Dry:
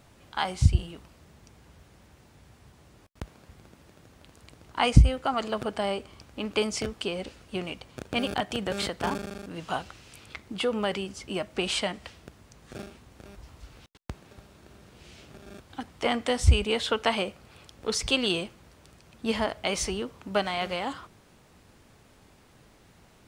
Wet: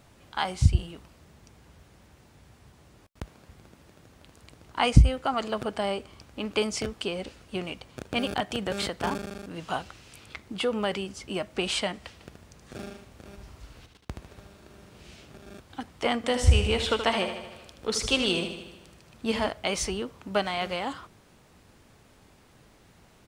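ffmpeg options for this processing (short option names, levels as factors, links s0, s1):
-filter_complex "[0:a]asplit=3[s0][s1][s2];[s0]afade=t=out:st=12.19:d=0.02[s3];[s1]aecho=1:1:75|150|225|300|375:0.501|0.205|0.0842|0.0345|0.0142,afade=t=in:st=12.19:d=0.02,afade=t=out:st=15.15:d=0.02[s4];[s2]afade=t=in:st=15.15:d=0.02[s5];[s3][s4][s5]amix=inputs=3:normalize=0,asettb=1/sr,asplit=3[s6][s7][s8];[s6]atrim=end=16.164[s9];[s7]atrim=start=16.16:end=19.49,asetpts=PTS-STARTPTS,afade=t=in:d=0.004:c=qsin,afade=t=out:st=3.326:d=0.004:c=qsin,aecho=1:1:77|154|231|308|385|462|539|616:0.376|0.226|0.135|0.0812|0.0487|0.0292|0.0175|0.0105,atrim=end_sample=146853[s10];[s8]atrim=start=19.486[s11];[s9][s10]acrossfade=d=0.004:c1=hsin:c2=qsin[s12];[s12][s11]acrossfade=d=0.004:c1=qsin:c2=hsin"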